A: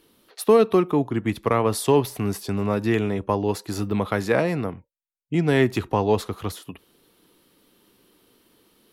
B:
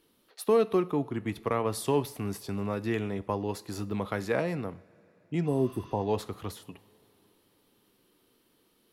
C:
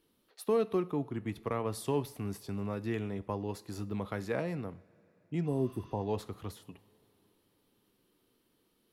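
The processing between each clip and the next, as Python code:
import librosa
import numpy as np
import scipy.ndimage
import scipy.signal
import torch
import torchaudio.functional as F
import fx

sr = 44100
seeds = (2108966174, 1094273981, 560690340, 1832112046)

y1 = fx.rev_double_slope(x, sr, seeds[0], early_s=0.52, late_s=4.2, knee_db=-18, drr_db=16.0)
y1 = fx.spec_repair(y1, sr, seeds[1], start_s=5.49, length_s=0.49, low_hz=1000.0, high_hz=7800.0, source='after')
y1 = y1 * librosa.db_to_amplitude(-8.0)
y2 = fx.low_shelf(y1, sr, hz=260.0, db=4.5)
y2 = y2 * librosa.db_to_amplitude(-6.5)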